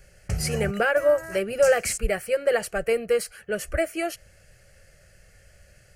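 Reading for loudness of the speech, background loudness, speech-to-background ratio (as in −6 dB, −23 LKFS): −25.0 LKFS, −33.5 LKFS, 8.5 dB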